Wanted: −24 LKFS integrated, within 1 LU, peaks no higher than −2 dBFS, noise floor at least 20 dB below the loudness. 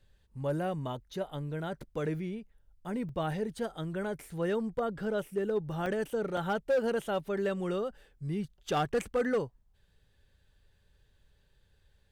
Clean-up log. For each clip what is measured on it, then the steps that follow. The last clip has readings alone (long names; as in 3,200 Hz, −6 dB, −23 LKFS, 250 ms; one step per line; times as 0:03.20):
share of clipped samples 0.6%; peaks flattened at −23.0 dBFS; number of dropouts 3; longest dropout 3.1 ms; integrated loudness −34.0 LKFS; sample peak −23.0 dBFS; target loudness −24.0 LKFS
→ clipped peaks rebuilt −23 dBFS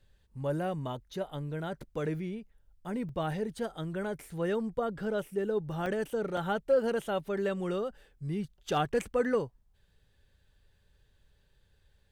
share of clipped samples 0.0%; number of dropouts 3; longest dropout 3.1 ms
→ repair the gap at 0:03.09/0:05.86/0:06.37, 3.1 ms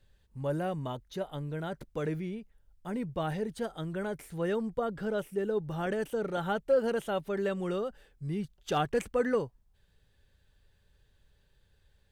number of dropouts 0; integrated loudness −33.5 LKFS; sample peak −16.5 dBFS; target loudness −24.0 LKFS
→ level +9.5 dB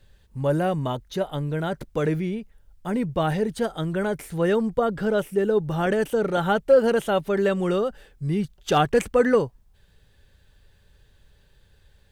integrated loudness −24.0 LKFS; sample peak −7.0 dBFS; background noise floor −59 dBFS